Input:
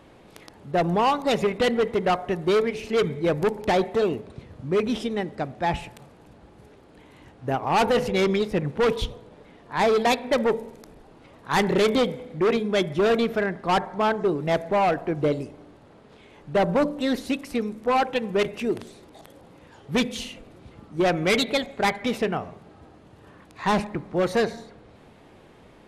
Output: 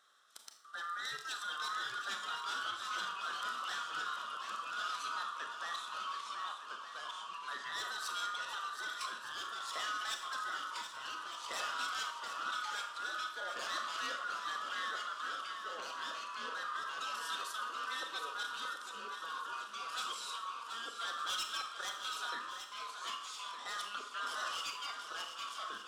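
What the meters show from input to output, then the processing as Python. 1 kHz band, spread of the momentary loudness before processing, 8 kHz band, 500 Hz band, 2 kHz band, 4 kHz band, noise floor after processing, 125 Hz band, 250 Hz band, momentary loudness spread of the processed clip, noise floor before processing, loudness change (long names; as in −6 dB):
−11.5 dB, 10 LU, −4.5 dB, −31.5 dB, −8.0 dB, −6.5 dB, −49 dBFS, below −40 dB, −36.5 dB, 5 LU, −52 dBFS, −15.5 dB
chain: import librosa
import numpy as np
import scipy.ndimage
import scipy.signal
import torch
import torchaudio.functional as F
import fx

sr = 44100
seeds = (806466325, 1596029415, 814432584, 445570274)

p1 = fx.band_swap(x, sr, width_hz=1000)
p2 = scipy.signal.sosfilt(scipy.signal.butter(2, 580.0, 'highpass', fs=sr, output='sos'), p1)
p3 = fx.level_steps(p2, sr, step_db=15)
p4 = fx.graphic_eq(p3, sr, hz=(1000, 2000, 4000, 8000), db=(-4, -10, 6, 8))
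p5 = 10.0 ** (-26.0 / 20.0) * np.tanh(p4 / 10.0 ** (-26.0 / 20.0))
p6 = fx.echo_pitch(p5, sr, ms=645, semitones=-2, count=2, db_per_echo=-3.0)
p7 = p6 + fx.echo_swing(p6, sr, ms=1212, ratio=1.5, feedback_pct=42, wet_db=-9.0, dry=0)
p8 = fx.rev_schroeder(p7, sr, rt60_s=0.51, comb_ms=27, drr_db=6.0)
y = F.gain(torch.from_numpy(p8), -5.5).numpy()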